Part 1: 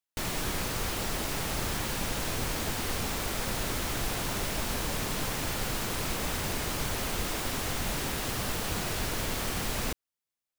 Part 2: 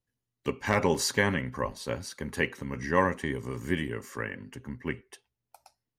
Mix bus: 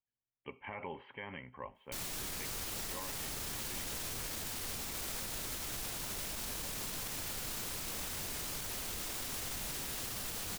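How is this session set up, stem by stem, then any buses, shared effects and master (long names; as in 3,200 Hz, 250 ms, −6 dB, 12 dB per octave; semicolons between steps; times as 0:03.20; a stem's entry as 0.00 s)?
−6.0 dB, 1.75 s, no send, no processing
−9.5 dB, 0.00 s, no send, Chebyshev low-pass with heavy ripple 3,200 Hz, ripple 9 dB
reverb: not used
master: high-shelf EQ 3,200 Hz +10 dB; brickwall limiter −31 dBFS, peak gain reduction 11.5 dB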